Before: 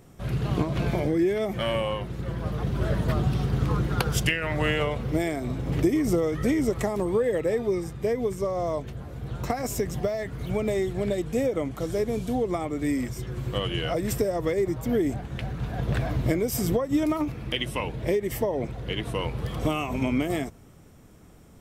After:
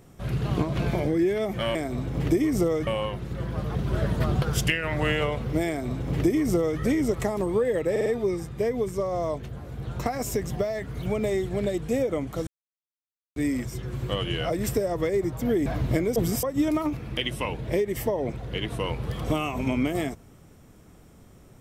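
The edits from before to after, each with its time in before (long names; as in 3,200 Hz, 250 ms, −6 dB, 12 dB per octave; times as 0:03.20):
0:03.30–0:04.01: remove
0:05.27–0:06.39: duplicate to 0:01.75
0:07.50: stutter 0.05 s, 4 plays
0:11.91–0:12.80: silence
0:15.10–0:16.01: remove
0:16.51–0:16.78: reverse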